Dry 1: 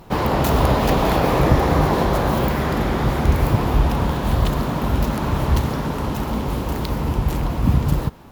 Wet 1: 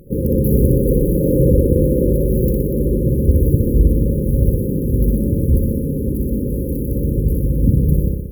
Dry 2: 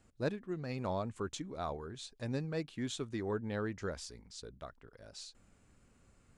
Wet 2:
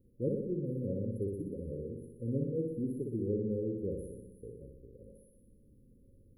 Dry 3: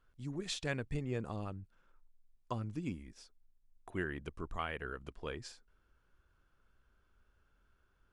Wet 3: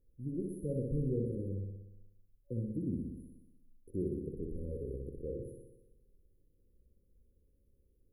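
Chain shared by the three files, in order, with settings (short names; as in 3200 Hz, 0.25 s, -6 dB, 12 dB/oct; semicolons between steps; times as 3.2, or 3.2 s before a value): flutter echo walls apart 10.4 m, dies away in 1 s; FFT band-reject 560–9800 Hz; gain +2 dB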